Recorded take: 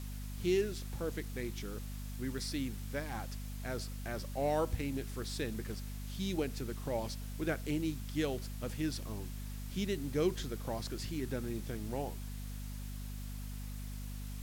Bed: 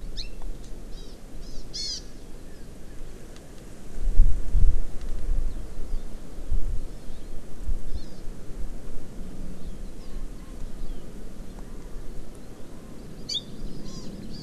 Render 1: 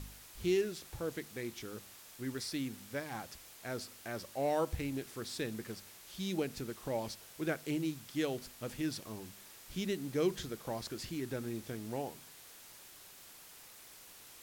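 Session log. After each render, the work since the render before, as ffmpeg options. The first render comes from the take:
-af "bandreject=f=50:t=h:w=4,bandreject=f=100:t=h:w=4,bandreject=f=150:t=h:w=4,bandreject=f=200:t=h:w=4,bandreject=f=250:t=h:w=4"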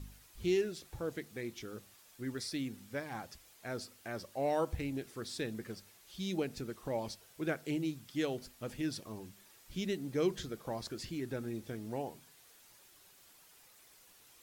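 -af "afftdn=nr=8:nf=-55"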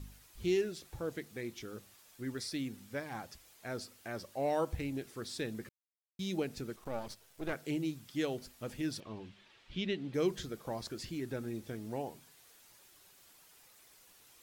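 -filter_complex "[0:a]asettb=1/sr,asplit=3[a][b][c];[a]atrim=end=6.764[d];[b]atrim=start=6.76:end=7.53,asetpts=PTS-STARTPTS,afade=t=in:d=0.004:c=qsin,afade=t=out:st=0.766:d=0.004:c=qsin,aeval=exprs='if(lt(val(0),0),0.251*val(0),val(0))':c=same[e];[c]atrim=start=7.526[f];[d][e]acrossfade=d=0.004:c1=hsin:c2=qsin[g];[g][f]acrossfade=d=0.004:c1=qsin:c2=hsin,asettb=1/sr,asplit=3[h][i][j];[h]atrim=end=9.004[k];[i]atrim=start=9:end=10.14,asetpts=PTS-STARTPTS,afade=t=in:d=0.004:c=qsin,afade=t=out:st=1.136:d=0.004:c=qsin,lowpass=f=3.2k:t=q:w=1.8[l];[j]atrim=start=10.136[m];[k][l]acrossfade=d=0.004:c1=hsin:c2=qsin[n];[n][m]acrossfade=d=0.004:c1=qsin:c2=hsin,asplit=3[o][p][q];[o]atrim=end=5.69,asetpts=PTS-STARTPTS,afade=t=out:st=5.686:d=0.004:c=hsin[r];[p]atrim=start=5.69:end=6.19,asetpts=PTS-STARTPTS,volume=0[s];[q]atrim=start=6.19,asetpts=PTS-STARTPTS,afade=t=in:d=0.004:c=hsin[t];[r][s][t]concat=n=3:v=0:a=1"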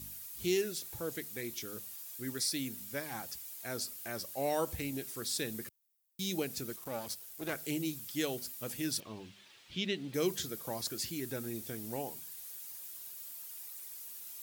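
-af "highpass=79,aemphasis=mode=production:type=75fm"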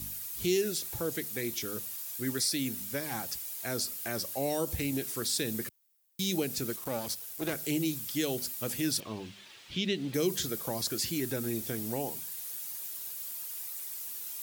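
-filter_complex "[0:a]acrossover=split=490|3000[a][b][c];[b]acompressor=threshold=-43dB:ratio=6[d];[a][d][c]amix=inputs=3:normalize=0,asplit=2[e][f];[f]alimiter=level_in=5.5dB:limit=-24dB:level=0:latency=1:release=62,volume=-5.5dB,volume=1.5dB[g];[e][g]amix=inputs=2:normalize=0"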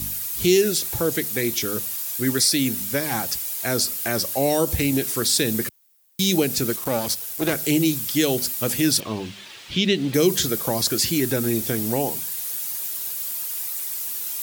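-af "volume=11dB"

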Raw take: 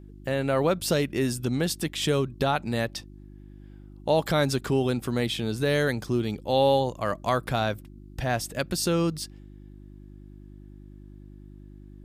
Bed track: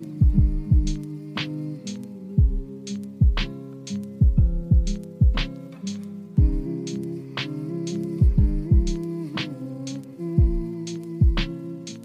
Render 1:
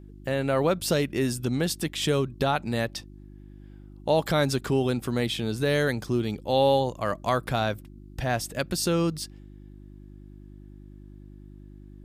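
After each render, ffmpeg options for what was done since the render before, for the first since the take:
-af anull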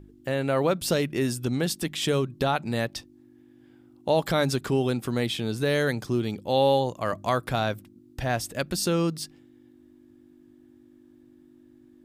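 -af "bandreject=f=50:t=h:w=4,bandreject=f=100:t=h:w=4,bandreject=f=150:t=h:w=4,bandreject=f=200:t=h:w=4"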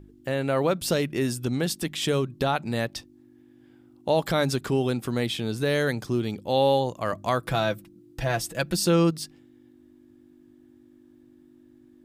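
-filter_complex "[0:a]asettb=1/sr,asplit=3[a][b][c];[a]atrim=end=7.444[d];[b]atrim=start=7.44:end=9.11,asetpts=PTS-STARTPTS,afade=t=in:d=0.004:c=qsin,afade=t=out:st=1.666:d=0.004:c=qsin,aecho=1:1:6:0.65,atrim=end_sample=73647[e];[c]atrim=start=9.106[f];[d][e]acrossfade=d=0.004:c1=hsin:c2=qsin[g];[g][f]acrossfade=d=0.004:c1=qsin:c2=hsin"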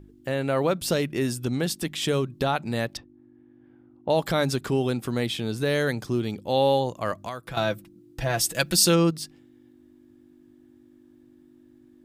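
-filter_complex "[0:a]asettb=1/sr,asplit=3[a][b][c];[a]atrim=end=2.974[d];[b]atrim=start=2.97:end=4.1,asetpts=PTS-STARTPTS,afade=t=in:d=0.004:c=qsin,afade=t=out:st=1.126:d=0.004:c=qsin,lowpass=1.7k[e];[c]atrim=start=4.096[f];[d][e]acrossfade=d=0.004:c1=hsin:c2=qsin[g];[g][f]acrossfade=d=0.004:c1=qsin:c2=hsin,asettb=1/sr,asplit=3[h][i][j];[h]atrim=end=7.124[k];[i]atrim=start=7.12:end=7.57,asetpts=PTS-STARTPTS,afade=t=in:d=0.004:c=qsin,afade=t=out:st=0.446:d=0.004:c=qsin,acrossover=split=1000|5200[l][m][n];[l]acompressor=threshold=-37dB:ratio=4[o];[m]acompressor=threshold=-39dB:ratio=4[p];[n]acompressor=threshold=-55dB:ratio=4[q];[o][p][q]amix=inputs=3:normalize=0[r];[j]atrim=start=7.566[s];[k][r]acrossfade=d=0.004:c1=hsin:c2=qsin[t];[t][s]acrossfade=d=0.004:c1=qsin:c2=hsin,asplit=3[u][v][w];[u]afade=t=out:st=8.37:d=0.02[x];[v]highshelf=f=2.1k:g=9.5,afade=t=in:st=8.37:d=0.02,afade=t=out:st=8.94:d=0.02[y];[w]afade=t=in:st=8.94:d=0.02[z];[x][y][z]amix=inputs=3:normalize=0"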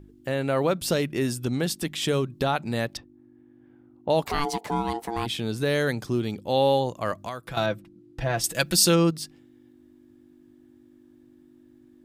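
-filter_complex "[0:a]asplit=3[a][b][c];[a]afade=t=out:st=4.24:d=0.02[d];[b]aeval=exprs='val(0)*sin(2*PI*580*n/s)':c=same,afade=t=in:st=4.24:d=0.02,afade=t=out:st=5.25:d=0.02[e];[c]afade=t=in:st=5.25:d=0.02[f];[d][e][f]amix=inputs=3:normalize=0,asettb=1/sr,asplit=3[g][h][i];[g]atrim=end=7.664[j];[h]atrim=start=7.66:end=8.44,asetpts=PTS-STARTPTS,afade=t=in:d=0.004:c=qsin,afade=t=out:st=0.776:d=0.004:c=qsin,aemphasis=mode=reproduction:type=50kf[k];[i]atrim=start=8.436[l];[j][k]acrossfade=d=0.004:c1=hsin:c2=qsin[m];[m][l]acrossfade=d=0.004:c1=qsin:c2=hsin"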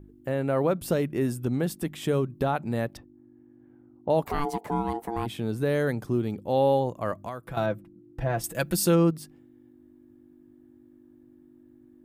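-af "equalizer=f=4.6k:w=0.53:g=-13"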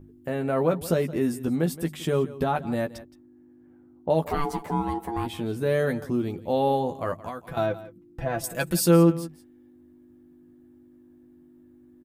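-filter_complex "[0:a]asplit=2[a][b];[b]adelay=12,volume=-5dB[c];[a][c]amix=inputs=2:normalize=0,aecho=1:1:170:0.141"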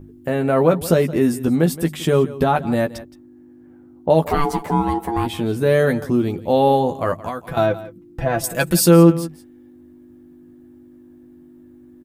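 -af "volume=8dB,alimiter=limit=-2dB:level=0:latency=1"

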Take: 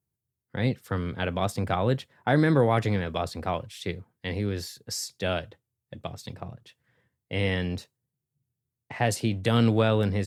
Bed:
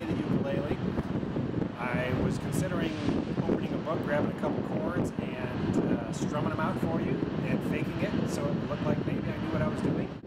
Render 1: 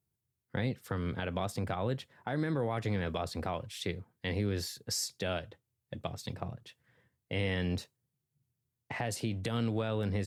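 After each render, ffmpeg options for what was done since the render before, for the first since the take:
-af "acompressor=threshold=-25dB:ratio=2.5,alimiter=limit=-22.5dB:level=0:latency=1:release=310"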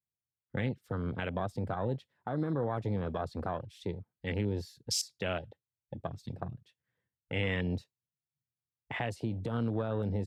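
-af "afwtdn=0.0112,adynamicequalizer=threshold=0.00178:dfrequency=3700:dqfactor=0.73:tfrequency=3700:tqfactor=0.73:attack=5:release=100:ratio=0.375:range=3:mode=boostabove:tftype=bell"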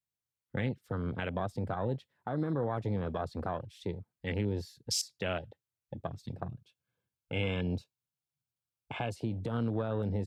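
-filter_complex "[0:a]asettb=1/sr,asplit=3[a][b][c];[a]atrim=end=6.524[d];[b]atrim=start=6.52:end=9.15,asetpts=PTS-STARTPTS,afade=t=in:d=0.004:c=qsin,afade=t=out:st=2.626:d=0.004:c=qsin,asuperstop=centerf=1900:order=8:qfactor=5.2[e];[c]atrim=start=9.146[f];[d][e]acrossfade=d=0.004:c1=hsin:c2=qsin[g];[g][f]acrossfade=d=0.004:c1=qsin:c2=hsin"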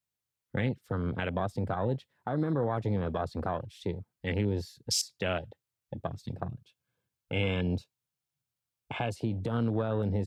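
-af "volume=3dB"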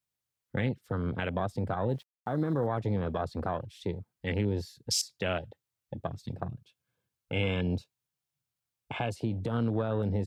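-filter_complex "[0:a]asettb=1/sr,asplit=3[a][b][c];[a]atrim=end=1.894[d];[b]atrim=start=1.89:end=2.67,asetpts=PTS-STARTPTS,afade=t=in:d=0.004:c=qsin,afade=t=out:st=0.776:d=0.004:c=qsin,aeval=exprs='val(0)*gte(abs(val(0)),0.00158)':c=same[e];[c]atrim=start=2.666[f];[d][e]acrossfade=d=0.004:c1=hsin:c2=qsin[g];[g][f]acrossfade=d=0.004:c1=qsin:c2=hsin"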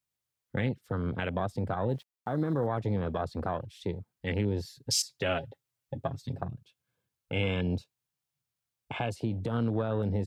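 -filter_complex "[0:a]asettb=1/sr,asplit=3[a][b][c];[a]atrim=end=4.644[d];[b]atrim=start=4.64:end=6.43,asetpts=PTS-STARTPTS,afade=t=in:d=0.004:c=qsin,afade=t=out:st=1.786:d=0.004:c=qsin,aecho=1:1:7.4:0.65,atrim=end_sample=78939[e];[c]atrim=start=6.426[f];[d][e]acrossfade=d=0.004:c1=hsin:c2=qsin[g];[g][f]acrossfade=d=0.004:c1=qsin:c2=hsin"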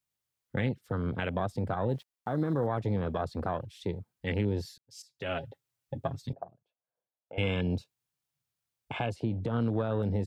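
-filter_complex "[0:a]asettb=1/sr,asplit=3[a][b][c];[a]atrim=end=6.334[d];[b]atrim=start=6.33:end=7.38,asetpts=PTS-STARTPTS,afade=t=in:d=0.004:c=qsin,afade=t=out:st=1.046:d=0.004:c=qsin,bandpass=f=670:t=q:w=3.2[e];[c]atrim=start=7.376[f];[d][e]acrossfade=d=0.004:c1=hsin:c2=qsin[g];[g][f]acrossfade=d=0.004:c1=qsin:c2=hsin,asettb=1/sr,asplit=3[h][i][j];[h]atrim=end=9.064[k];[i]atrim=start=9.06:end=9.61,asetpts=PTS-STARTPTS,afade=t=in:d=0.004:c=qsin,afade=t=out:st=0.546:d=0.004:c=qsin,aemphasis=mode=reproduction:type=cd[l];[j]atrim=start=9.606[m];[k][l]acrossfade=d=0.004:c1=hsin:c2=qsin[n];[n][m]acrossfade=d=0.004:c1=qsin:c2=hsin,asplit=2[o][p];[o]atrim=end=4.78,asetpts=PTS-STARTPTS,afade=t=out:st=4.776:d=0.004:c=hsin[q];[p]atrim=start=4.78,asetpts=PTS-STARTPTS,afade=t=in:d=0.67:c=qua[r];[q][r]concat=n=2:v=0:a=1"

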